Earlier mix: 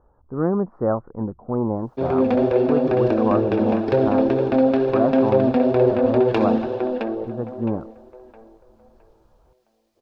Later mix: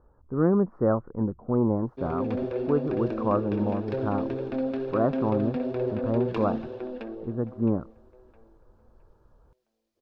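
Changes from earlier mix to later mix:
background -10.5 dB; master: add peaking EQ 770 Hz -6 dB 0.85 oct

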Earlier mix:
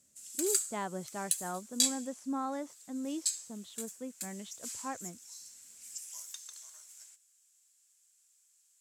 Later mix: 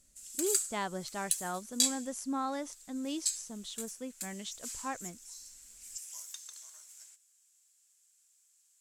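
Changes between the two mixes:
speech: remove low-pass 1.4 kHz 6 dB/octave; master: remove high-pass 94 Hz 24 dB/octave

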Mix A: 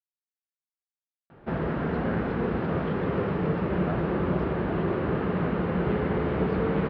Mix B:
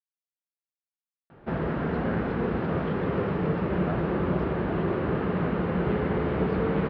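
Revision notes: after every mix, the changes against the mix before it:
no change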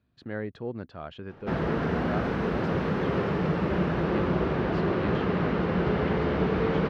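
speech: entry -1.75 s; master: remove distance through air 260 m

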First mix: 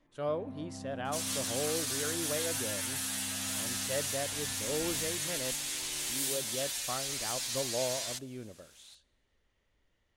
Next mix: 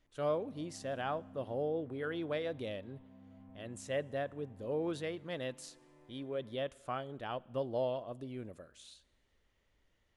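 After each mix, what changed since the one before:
first sound -11.0 dB; second sound: muted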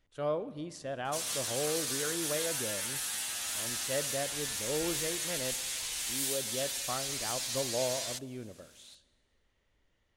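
speech: send +8.0 dB; first sound -9.0 dB; second sound: unmuted

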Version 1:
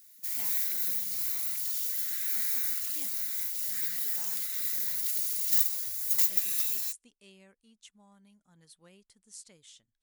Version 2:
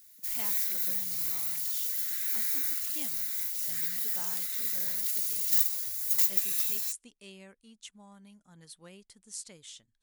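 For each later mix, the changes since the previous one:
speech +6.5 dB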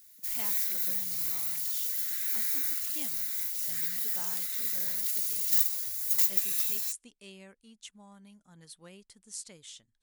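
no change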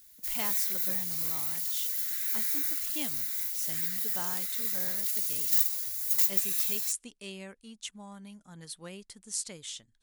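speech +7.0 dB

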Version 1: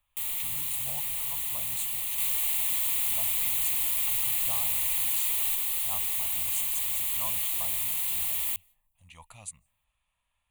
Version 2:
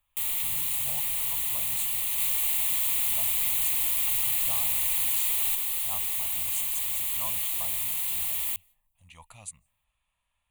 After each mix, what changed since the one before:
first sound +3.0 dB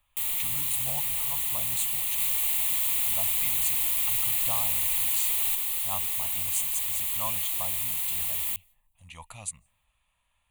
speech +5.5 dB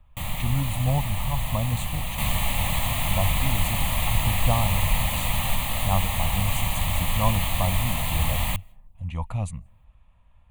speech -8.5 dB; first sound -6.0 dB; master: remove pre-emphasis filter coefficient 0.97

